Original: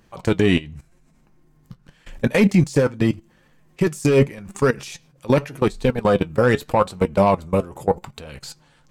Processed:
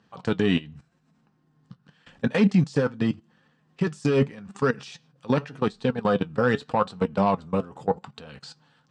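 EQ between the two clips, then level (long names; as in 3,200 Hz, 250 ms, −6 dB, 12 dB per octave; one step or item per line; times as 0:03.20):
high-frequency loss of the air 94 metres
loudspeaker in its box 160–8,900 Hz, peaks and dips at 350 Hz −10 dB, 590 Hz −8 dB, 960 Hz −3 dB, 2,200 Hz −9 dB, 6,600 Hz −5 dB
−1.0 dB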